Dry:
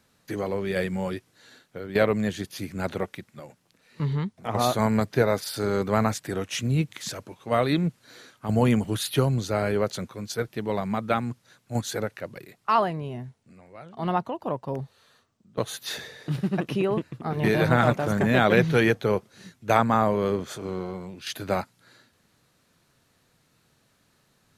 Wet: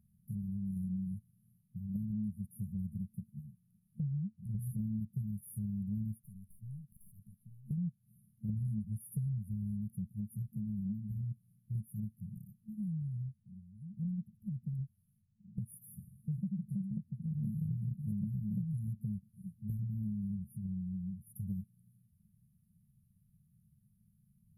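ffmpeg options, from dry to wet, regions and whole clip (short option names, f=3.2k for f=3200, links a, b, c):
-filter_complex "[0:a]asettb=1/sr,asplit=3[a][b][c];[a]atrim=end=6.214[d];[b]atrim=start=6.21:end=7.71,asetpts=PTS-STARTPTS,afade=t=in:d=0.004:c=qsin,afade=t=out:st=1.496:d=0.004:c=qsin,tiltshelf=f=1.4k:g=-6,acompressor=threshold=-38dB:ratio=10:attack=3.2:release=140:knee=1:detection=peak,aeval=exprs='(tanh(44.7*val(0)+0.75)-tanh(0.75))/44.7':c=same[e];[c]atrim=start=7.706[f];[d][e]acrossfade=d=0.004:c1=hsin:c2=qsin[g];[g][f]acrossfade=d=0.004:c1=qsin:c2=hsin,afftfilt=real='re*(1-between(b*sr/4096,220,9500))':imag='im*(1-between(b*sr/4096,220,9500))':win_size=4096:overlap=0.75,highshelf=f=4.6k:g=-11.5,acompressor=threshold=-38dB:ratio=4,volume=2dB"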